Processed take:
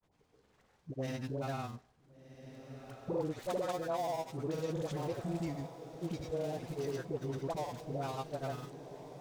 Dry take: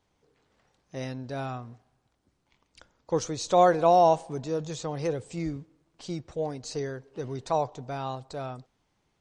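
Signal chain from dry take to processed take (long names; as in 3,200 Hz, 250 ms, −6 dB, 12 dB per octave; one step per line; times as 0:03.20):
gap after every zero crossing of 0.12 ms
downward compressor 8 to 1, threshold −33 dBFS, peak gain reduction 18 dB
all-pass dispersion highs, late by 92 ms, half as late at 770 Hz
granular cloud, pitch spread up and down by 0 semitones
on a send: feedback delay with all-pass diffusion 1,501 ms, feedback 52%, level −11.5 dB
on the sum: level +1 dB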